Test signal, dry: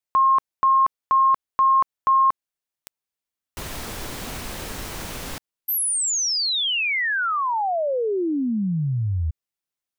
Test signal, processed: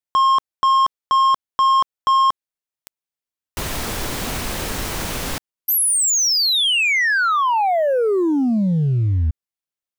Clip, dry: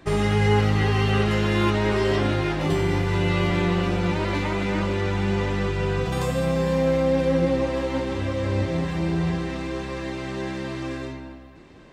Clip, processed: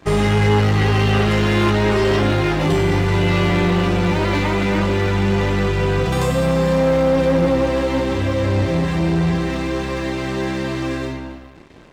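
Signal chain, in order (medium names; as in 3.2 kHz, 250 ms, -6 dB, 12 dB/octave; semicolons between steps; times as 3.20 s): waveshaping leveller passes 2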